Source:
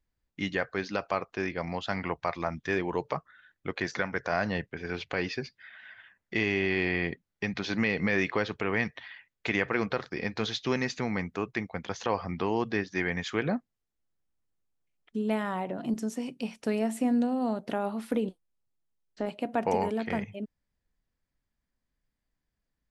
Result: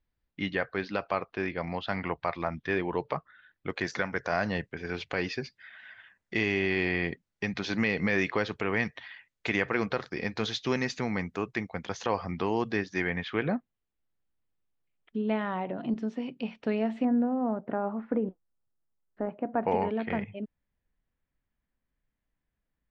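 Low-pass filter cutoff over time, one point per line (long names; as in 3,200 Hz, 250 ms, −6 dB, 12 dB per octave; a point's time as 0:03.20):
low-pass filter 24 dB per octave
4,400 Hz
from 0:03.70 9,000 Hz
from 0:13.07 3,700 Hz
from 0:17.05 1,700 Hz
from 0:19.64 3,300 Hz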